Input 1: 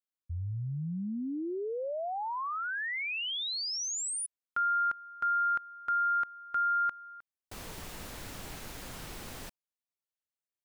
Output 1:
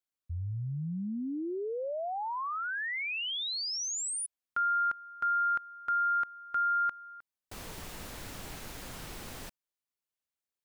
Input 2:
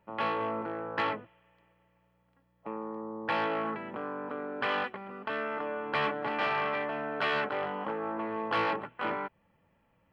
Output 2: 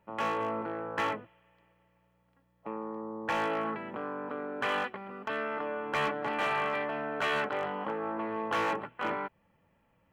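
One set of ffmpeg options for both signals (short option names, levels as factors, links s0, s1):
-af "asoftclip=type=hard:threshold=0.0708"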